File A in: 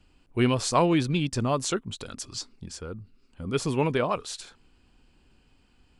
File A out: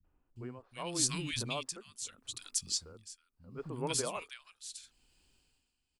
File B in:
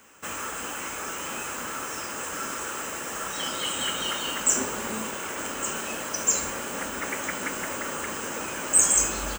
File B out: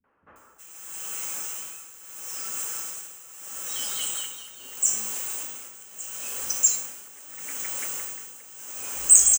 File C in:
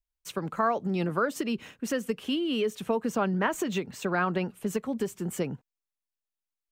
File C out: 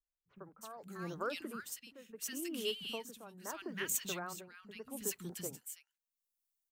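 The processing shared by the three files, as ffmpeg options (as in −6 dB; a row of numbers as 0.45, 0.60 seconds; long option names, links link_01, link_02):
-filter_complex "[0:a]acrossover=split=220|1500[link_01][link_02][link_03];[link_02]adelay=40[link_04];[link_03]adelay=360[link_05];[link_01][link_04][link_05]amix=inputs=3:normalize=0,tremolo=f=0.77:d=0.82,crystalizer=i=5.5:c=0,volume=-11dB"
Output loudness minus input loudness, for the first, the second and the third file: −9.5, +1.0, −11.0 LU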